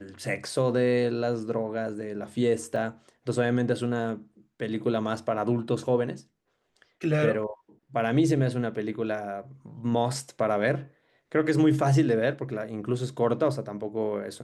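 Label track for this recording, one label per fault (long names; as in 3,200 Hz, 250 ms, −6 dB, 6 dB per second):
2.760000	2.760000	drop-out 3.4 ms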